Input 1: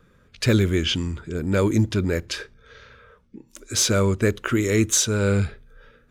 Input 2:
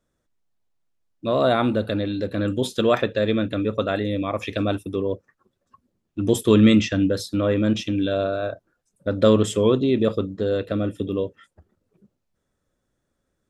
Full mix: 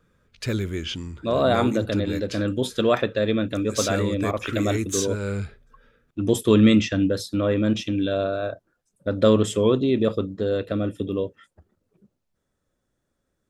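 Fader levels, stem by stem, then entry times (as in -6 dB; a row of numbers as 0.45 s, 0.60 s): -7.5 dB, -1.0 dB; 0.00 s, 0.00 s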